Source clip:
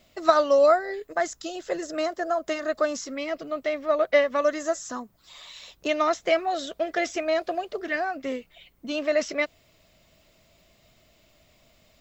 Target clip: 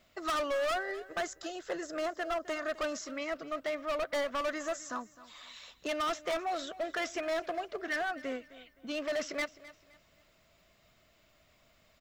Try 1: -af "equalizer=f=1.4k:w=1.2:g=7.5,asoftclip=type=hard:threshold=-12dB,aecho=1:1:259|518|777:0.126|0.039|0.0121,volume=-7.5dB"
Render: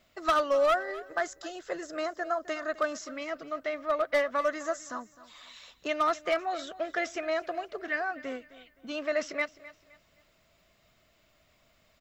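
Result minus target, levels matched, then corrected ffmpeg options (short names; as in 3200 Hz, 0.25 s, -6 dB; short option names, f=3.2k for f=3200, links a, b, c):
hard clip: distortion -9 dB
-af "equalizer=f=1.4k:w=1.2:g=7.5,asoftclip=type=hard:threshold=-22dB,aecho=1:1:259|518|777:0.126|0.039|0.0121,volume=-7.5dB"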